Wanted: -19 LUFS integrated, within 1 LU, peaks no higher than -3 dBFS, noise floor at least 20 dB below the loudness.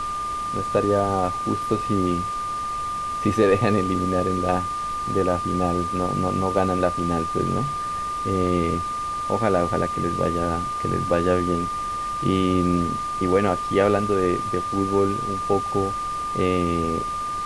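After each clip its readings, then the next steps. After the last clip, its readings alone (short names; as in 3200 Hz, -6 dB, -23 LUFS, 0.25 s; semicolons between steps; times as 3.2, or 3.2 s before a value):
steady tone 1200 Hz; tone level -25 dBFS; noise floor -28 dBFS; noise floor target -43 dBFS; loudness -23.0 LUFS; peak -6.0 dBFS; loudness target -19.0 LUFS
-> notch 1200 Hz, Q 30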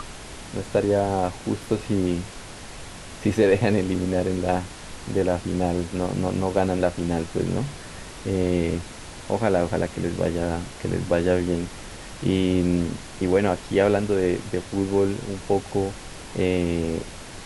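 steady tone none; noise floor -40 dBFS; noise floor target -45 dBFS
-> noise print and reduce 6 dB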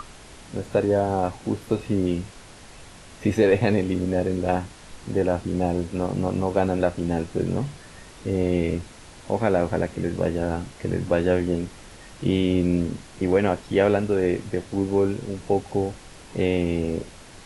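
noise floor -45 dBFS; loudness -24.5 LUFS; peak -6.0 dBFS; loudness target -19.0 LUFS
-> gain +5.5 dB; limiter -3 dBFS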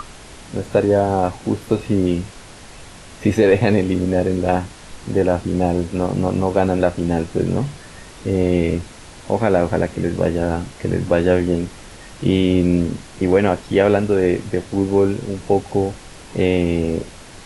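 loudness -19.0 LUFS; peak -3.0 dBFS; noise floor -40 dBFS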